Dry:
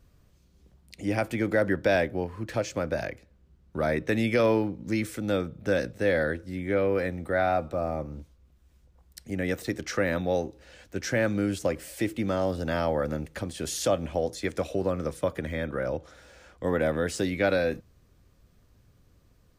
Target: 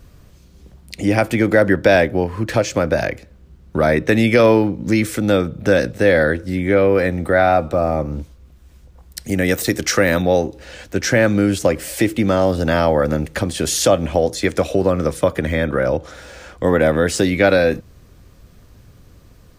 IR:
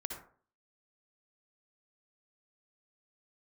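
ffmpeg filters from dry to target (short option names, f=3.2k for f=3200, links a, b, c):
-filter_complex "[0:a]asettb=1/sr,asplit=3[a][b][c];[a]atrim=end=9.244[d];[b]atrim=start=9.24:end=10.22,asetpts=PTS-STARTPTS,afade=t=in:d=0.004:c=qsin,afade=t=out:st=0.976:d=0.004:c=qsin,aemphasis=mode=production:type=cd[e];[c]atrim=start=10.216[f];[d][e]acrossfade=d=0.004:c1=hsin:c2=qsin[g];[g][f]acrossfade=d=0.004:c1=qsin:c2=hsin,asplit=2[h][i];[i]acompressor=threshold=-33dB:ratio=6,volume=-1dB[j];[h][j]amix=inputs=2:normalize=0,volume=9dB"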